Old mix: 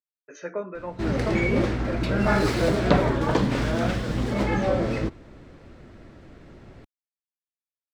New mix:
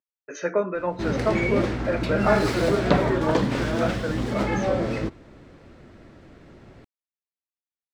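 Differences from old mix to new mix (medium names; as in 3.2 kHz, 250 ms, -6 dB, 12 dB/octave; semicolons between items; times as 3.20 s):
speech +8.0 dB; master: add bass shelf 66 Hz -6 dB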